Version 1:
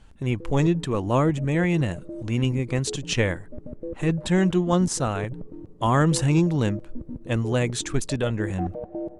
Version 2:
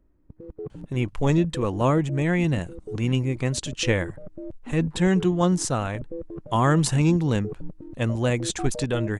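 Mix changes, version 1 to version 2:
speech: entry +0.70 s; reverb: off

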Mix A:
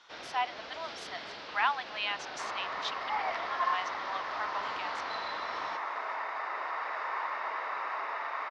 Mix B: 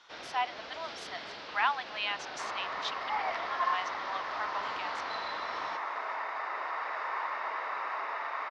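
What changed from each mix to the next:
no change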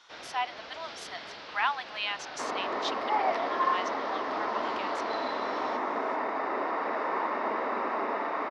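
speech: add treble shelf 7.2 kHz +10 dB; second sound: remove high-pass 1.1 kHz 12 dB/octave

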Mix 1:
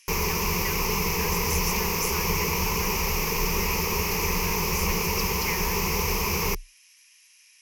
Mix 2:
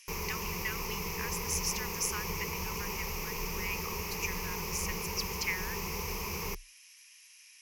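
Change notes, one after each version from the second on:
background -11.0 dB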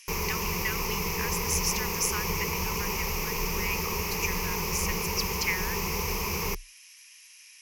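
speech +4.5 dB; background +6.5 dB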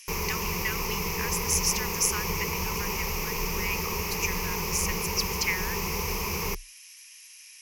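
speech: add treble shelf 5.3 kHz +5.5 dB

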